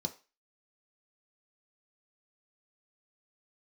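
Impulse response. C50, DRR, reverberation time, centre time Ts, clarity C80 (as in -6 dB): 15.5 dB, 3.5 dB, 0.30 s, 10 ms, 21.0 dB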